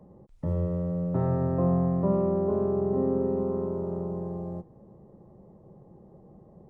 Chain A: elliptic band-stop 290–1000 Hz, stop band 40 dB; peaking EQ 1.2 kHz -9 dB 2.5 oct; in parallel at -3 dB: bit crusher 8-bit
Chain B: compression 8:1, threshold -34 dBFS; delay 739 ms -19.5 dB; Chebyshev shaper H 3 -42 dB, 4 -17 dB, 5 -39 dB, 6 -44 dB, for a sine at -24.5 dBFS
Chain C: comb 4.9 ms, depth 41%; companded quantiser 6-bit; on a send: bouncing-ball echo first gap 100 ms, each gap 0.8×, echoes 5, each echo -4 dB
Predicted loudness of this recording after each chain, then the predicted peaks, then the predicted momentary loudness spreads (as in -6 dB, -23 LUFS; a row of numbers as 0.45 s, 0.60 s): -27.5 LUFS, -38.0 LUFS, -25.5 LUFS; -12.5 dBFS, -24.0 dBFS, -11.0 dBFS; 10 LU, 16 LU, 13 LU